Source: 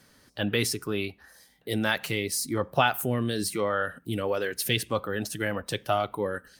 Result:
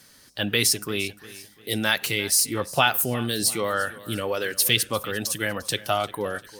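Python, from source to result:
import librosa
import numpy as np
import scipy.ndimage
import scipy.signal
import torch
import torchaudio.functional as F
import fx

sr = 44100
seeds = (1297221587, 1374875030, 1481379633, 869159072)

y = fx.high_shelf(x, sr, hz=2300.0, db=10.5)
y = fx.echo_feedback(y, sr, ms=349, feedback_pct=41, wet_db=-18.5)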